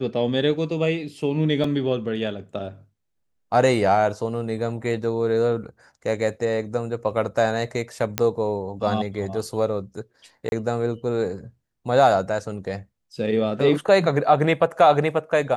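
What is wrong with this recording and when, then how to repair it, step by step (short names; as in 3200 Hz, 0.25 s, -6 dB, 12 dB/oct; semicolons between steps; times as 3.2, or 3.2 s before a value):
1.64 gap 3.1 ms
8.18 pop -5 dBFS
10.49–10.52 gap 31 ms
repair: de-click; interpolate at 1.64, 3.1 ms; interpolate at 10.49, 31 ms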